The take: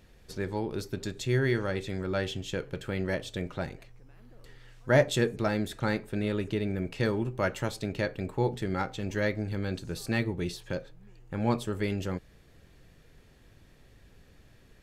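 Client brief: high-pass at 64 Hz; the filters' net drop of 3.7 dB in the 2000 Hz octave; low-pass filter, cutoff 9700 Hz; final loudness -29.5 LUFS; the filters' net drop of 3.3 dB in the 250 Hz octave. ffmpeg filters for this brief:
-af "highpass=64,lowpass=9.7k,equalizer=f=250:t=o:g=-4.5,equalizer=f=2k:t=o:g=-4.5,volume=3.5dB"

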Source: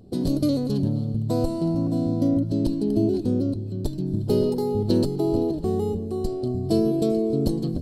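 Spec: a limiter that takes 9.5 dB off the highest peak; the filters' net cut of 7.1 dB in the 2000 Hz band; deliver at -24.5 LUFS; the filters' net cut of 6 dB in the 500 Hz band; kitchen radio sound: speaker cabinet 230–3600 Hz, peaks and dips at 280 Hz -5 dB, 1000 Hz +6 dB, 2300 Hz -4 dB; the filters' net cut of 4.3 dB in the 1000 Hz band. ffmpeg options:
-af "equalizer=f=500:t=o:g=-6,equalizer=f=1k:t=o:g=-4.5,equalizer=f=2k:t=o:g=-6.5,alimiter=limit=-20dB:level=0:latency=1,highpass=230,equalizer=f=280:t=q:w=4:g=-5,equalizer=f=1k:t=q:w=4:g=6,equalizer=f=2.3k:t=q:w=4:g=-4,lowpass=f=3.6k:w=0.5412,lowpass=f=3.6k:w=1.3066,volume=9dB"

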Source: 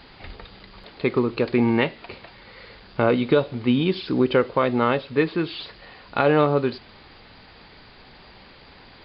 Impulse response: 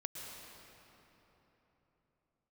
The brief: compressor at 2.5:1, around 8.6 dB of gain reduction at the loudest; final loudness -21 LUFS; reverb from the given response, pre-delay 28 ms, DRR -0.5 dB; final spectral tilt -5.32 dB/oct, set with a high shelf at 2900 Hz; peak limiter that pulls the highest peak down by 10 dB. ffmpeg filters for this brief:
-filter_complex "[0:a]highshelf=f=2.9k:g=-4.5,acompressor=threshold=-27dB:ratio=2.5,alimiter=limit=-22dB:level=0:latency=1,asplit=2[a][b];[1:a]atrim=start_sample=2205,adelay=28[c];[b][c]afir=irnorm=-1:irlink=0,volume=1.5dB[d];[a][d]amix=inputs=2:normalize=0,volume=10dB"

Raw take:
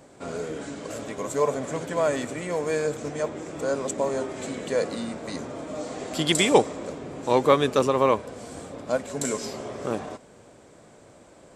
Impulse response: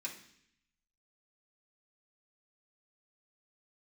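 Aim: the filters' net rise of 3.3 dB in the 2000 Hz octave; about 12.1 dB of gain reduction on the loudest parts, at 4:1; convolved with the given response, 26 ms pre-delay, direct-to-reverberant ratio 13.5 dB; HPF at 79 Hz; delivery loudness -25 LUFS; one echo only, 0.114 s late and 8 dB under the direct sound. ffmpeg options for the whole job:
-filter_complex "[0:a]highpass=79,equalizer=f=2k:t=o:g=4,acompressor=threshold=-26dB:ratio=4,aecho=1:1:114:0.398,asplit=2[a][b];[1:a]atrim=start_sample=2205,adelay=26[c];[b][c]afir=irnorm=-1:irlink=0,volume=-13dB[d];[a][d]amix=inputs=2:normalize=0,volume=6dB"

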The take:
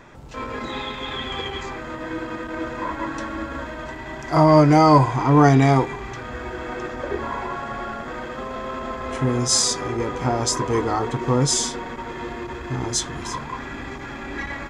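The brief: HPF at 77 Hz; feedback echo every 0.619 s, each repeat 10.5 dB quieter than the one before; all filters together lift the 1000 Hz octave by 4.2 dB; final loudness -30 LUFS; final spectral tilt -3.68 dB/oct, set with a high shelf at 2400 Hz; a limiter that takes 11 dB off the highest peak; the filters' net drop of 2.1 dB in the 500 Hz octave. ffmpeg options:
-af "highpass=77,equalizer=f=500:t=o:g=-5,equalizer=f=1k:t=o:g=5.5,highshelf=f=2.4k:g=5,alimiter=limit=-12dB:level=0:latency=1,aecho=1:1:619|1238|1857:0.299|0.0896|0.0269,volume=-5.5dB"

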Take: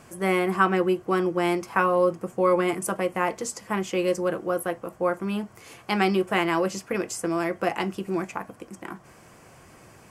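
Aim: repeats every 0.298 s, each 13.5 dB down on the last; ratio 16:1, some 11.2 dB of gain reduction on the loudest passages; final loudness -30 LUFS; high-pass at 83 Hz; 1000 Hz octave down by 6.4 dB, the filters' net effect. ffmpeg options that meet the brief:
-af "highpass=83,equalizer=f=1k:t=o:g=-8.5,acompressor=threshold=-30dB:ratio=16,aecho=1:1:298|596:0.211|0.0444,volume=5.5dB"

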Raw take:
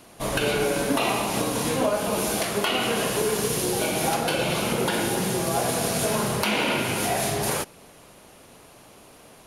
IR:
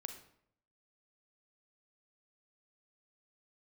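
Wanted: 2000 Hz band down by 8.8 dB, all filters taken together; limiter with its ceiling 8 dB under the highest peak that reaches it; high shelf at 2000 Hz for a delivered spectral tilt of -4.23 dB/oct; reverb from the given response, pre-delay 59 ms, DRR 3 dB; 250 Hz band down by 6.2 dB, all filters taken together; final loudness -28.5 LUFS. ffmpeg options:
-filter_complex "[0:a]equalizer=f=250:t=o:g=-8.5,highshelf=f=2k:g=-8.5,equalizer=f=2k:t=o:g=-6.5,alimiter=limit=-21.5dB:level=0:latency=1,asplit=2[a][b];[1:a]atrim=start_sample=2205,adelay=59[c];[b][c]afir=irnorm=-1:irlink=0,volume=0dB[d];[a][d]amix=inputs=2:normalize=0,volume=1dB"

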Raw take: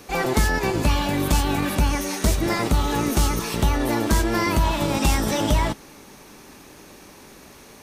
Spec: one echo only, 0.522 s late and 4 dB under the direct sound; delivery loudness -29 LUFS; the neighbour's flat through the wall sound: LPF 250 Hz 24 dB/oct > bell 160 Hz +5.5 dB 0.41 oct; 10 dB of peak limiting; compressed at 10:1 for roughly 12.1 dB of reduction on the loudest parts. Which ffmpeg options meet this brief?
-af "acompressor=threshold=-27dB:ratio=10,alimiter=level_in=1dB:limit=-24dB:level=0:latency=1,volume=-1dB,lowpass=f=250:w=0.5412,lowpass=f=250:w=1.3066,equalizer=f=160:t=o:w=0.41:g=5.5,aecho=1:1:522:0.631,volume=7.5dB"

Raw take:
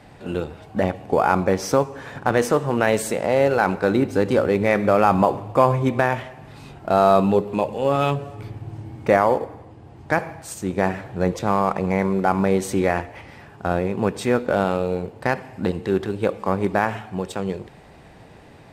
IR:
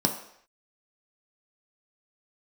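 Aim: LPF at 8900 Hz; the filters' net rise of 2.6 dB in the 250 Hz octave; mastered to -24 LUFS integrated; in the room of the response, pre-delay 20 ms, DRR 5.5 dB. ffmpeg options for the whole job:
-filter_complex "[0:a]lowpass=8.9k,equalizer=f=250:t=o:g=3.5,asplit=2[a][b];[1:a]atrim=start_sample=2205,adelay=20[c];[b][c]afir=irnorm=-1:irlink=0,volume=-15.5dB[d];[a][d]amix=inputs=2:normalize=0,volume=-6.5dB"

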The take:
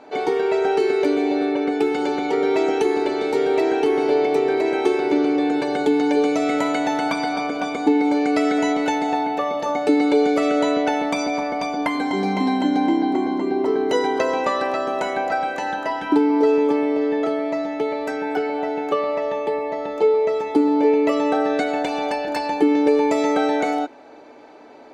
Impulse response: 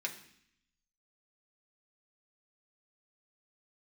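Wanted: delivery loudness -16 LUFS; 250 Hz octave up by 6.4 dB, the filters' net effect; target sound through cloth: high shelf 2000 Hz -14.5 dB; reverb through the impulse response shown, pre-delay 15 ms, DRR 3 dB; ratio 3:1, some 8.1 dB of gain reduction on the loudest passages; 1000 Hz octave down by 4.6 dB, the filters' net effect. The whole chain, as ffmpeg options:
-filter_complex "[0:a]equalizer=f=250:t=o:g=8.5,equalizer=f=1k:t=o:g=-4,acompressor=threshold=-18dB:ratio=3,asplit=2[a][b];[1:a]atrim=start_sample=2205,adelay=15[c];[b][c]afir=irnorm=-1:irlink=0,volume=-5dB[d];[a][d]amix=inputs=2:normalize=0,highshelf=f=2k:g=-14.5,volume=3dB"

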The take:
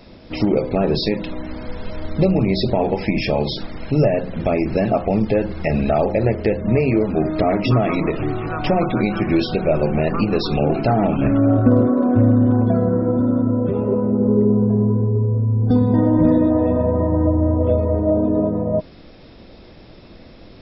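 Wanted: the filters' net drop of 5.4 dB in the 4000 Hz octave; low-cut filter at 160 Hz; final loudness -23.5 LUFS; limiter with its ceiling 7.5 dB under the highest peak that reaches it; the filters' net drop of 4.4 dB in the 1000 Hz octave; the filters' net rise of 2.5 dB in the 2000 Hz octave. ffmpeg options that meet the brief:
-af "highpass=160,equalizer=f=1k:t=o:g=-8.5,equalizer=f=2k:t=o:g=8,equalizer=f=4k:t=o:g=-8.5,volume=-1.5dB,alimiter=limit=-13dB:level=0:latency=1"

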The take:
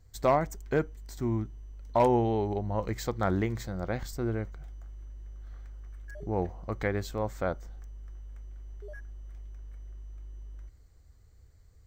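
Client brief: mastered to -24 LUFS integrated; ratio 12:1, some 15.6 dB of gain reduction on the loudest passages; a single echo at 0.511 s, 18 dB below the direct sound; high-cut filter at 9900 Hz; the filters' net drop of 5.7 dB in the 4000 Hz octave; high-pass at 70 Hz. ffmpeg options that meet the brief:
-af "highpass=70,lowpass=9.9k,equalizer=f=4k:t=o:g=-7,acompressor=threshold=-35dB:ratio=12,aecho=1:1:511:0.126,volume=18.5dB"

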